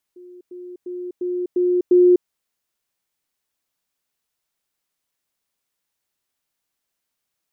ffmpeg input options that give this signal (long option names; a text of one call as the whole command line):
ffmpeg -f lavfi -i "aevalsrc='pow(10,(-39+6*floor(t/0.35))/20)*sin(2*PI*358*t)*clip(min(mod(t,0.35),0.25-mod(t,0.35))/0.005,0,1)':duration=2.1:sample_rate=44100" out.wav